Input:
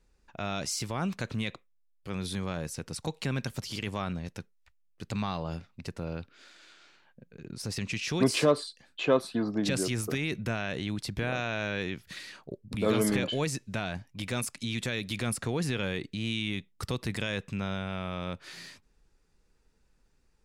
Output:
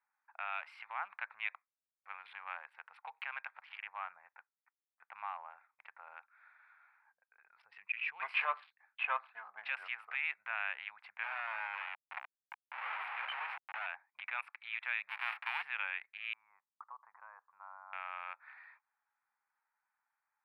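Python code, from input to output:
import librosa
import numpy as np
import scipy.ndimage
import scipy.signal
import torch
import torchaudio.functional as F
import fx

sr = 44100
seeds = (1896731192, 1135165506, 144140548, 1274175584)

y = fx.air_absorb(x, sr, metres=320.0, at=(3.77, 5.58))
y = fx.spec_expand(y, sr, power=1.5, at=(7.6, 8.2))
y = fx.schmitt(y, sr, flips_db=-35.0, at=(11.23, 13.86))
y = fx.envelope_flatten(y, sr, power=0.1, at=(15.07, 15.61), fade=0.02)
y = fx.ladder_lowpass(y, sr, hz=1200.0, resonance_pct=60, at=(16.33, 17.93))
y = fx.wiener(y, sr, points=15)
y = scipy.signal.sosfilt(scipy.signal.ellip(3, 1.0, 50, [820.0, 2500.0], 'bandpass', fs=sr, output='sos'), y)
y = fx.tilt_eq(y, sr, slope=3.0)
y = y * librosa.db_to_amplitude(-1.0)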